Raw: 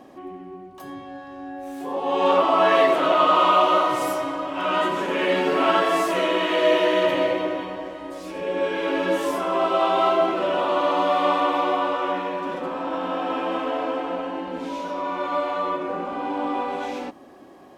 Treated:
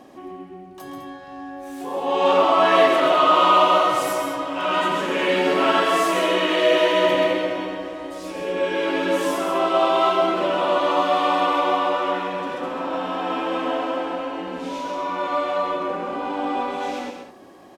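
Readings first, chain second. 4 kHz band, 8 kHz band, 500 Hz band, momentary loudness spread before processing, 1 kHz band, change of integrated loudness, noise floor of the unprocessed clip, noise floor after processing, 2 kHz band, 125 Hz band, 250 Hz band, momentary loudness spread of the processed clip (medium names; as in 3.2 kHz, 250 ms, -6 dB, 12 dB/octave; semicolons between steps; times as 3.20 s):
+3.5 dB, +5.0 dB, +1.5 dB, 17 LU, +1.5 dB, +1.5 dB, -43 dBFS, -41 dBFS, +2.5 dB, +1.5 dB, +1.0 dB, 18 LU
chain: peaking EQ 7.4 kHz +4 dB 2.6 oct; loudspeakers at several distances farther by 46 m -7 dB, 70 m -11 dB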